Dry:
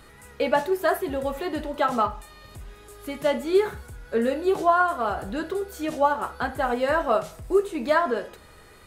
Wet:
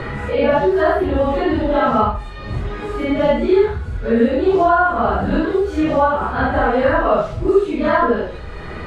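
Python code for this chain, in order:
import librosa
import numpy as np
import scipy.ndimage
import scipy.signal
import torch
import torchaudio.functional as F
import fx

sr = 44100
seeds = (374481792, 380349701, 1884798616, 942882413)

y = fx.phase_scramble(x, sr, seeds[0], window_ms=200)
y = scipy.signal.sosfilt(scipy.signal.butter(2, 3500.0, 'lowpass', fs=sr, output='sos'), y)
y = fx.low_shelf(y, sr, hz=220.0, db=10.0)
y = fx.band_squash(y, sr, depth_pct=70)
y = y * 10.0 ** (6.0 / 20.0)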